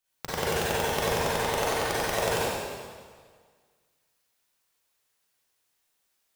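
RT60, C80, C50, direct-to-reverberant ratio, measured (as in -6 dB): 1.7 s, -2.0 dB, -6.0 dB, -9.5 dB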